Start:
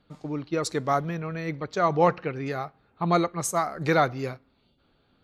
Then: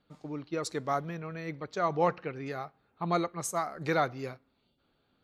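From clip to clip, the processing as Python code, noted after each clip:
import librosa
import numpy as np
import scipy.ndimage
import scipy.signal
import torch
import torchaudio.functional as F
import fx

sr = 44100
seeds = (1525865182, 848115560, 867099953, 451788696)

y = fx.low_shelf(x, sr, hz=110.0, db=-5.5)
y = y * 10.0 ** (-6.0 / 20.0)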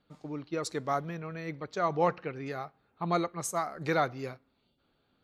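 y = x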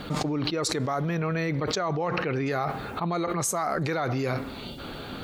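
y = fx.env_flatten(x, sr, amount_pct=100)
y = y * 10.0 ** (-4.5 / 20.0)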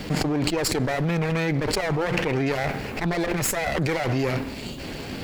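y = fx.lower_of_two(x, sr, delay_ms=0.41)
y = y * 10.0 ** (5.0 / 20.0)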